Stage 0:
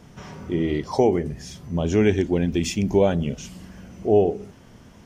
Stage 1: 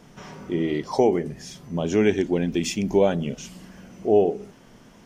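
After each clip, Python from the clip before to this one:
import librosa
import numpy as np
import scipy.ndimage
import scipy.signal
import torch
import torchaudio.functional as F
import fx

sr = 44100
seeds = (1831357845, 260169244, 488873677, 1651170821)

y = fx.peak_eq(x, sr, hz=77.0, db=-15.0, octaves=1.0)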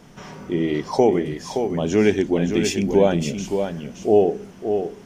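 y = x + 10.0 ** (-7.0 / 20.0) * np.pad(x, (int(571 * sr / 1000.0), 0))[:len(x)]
y = y * 10.0 ** (2.5 / 20.0)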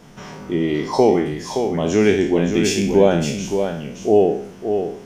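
y = fx.spec_trails(x, sr, decay_s=0.55)
y = y * 10.0 ** (1.0 / 20.0)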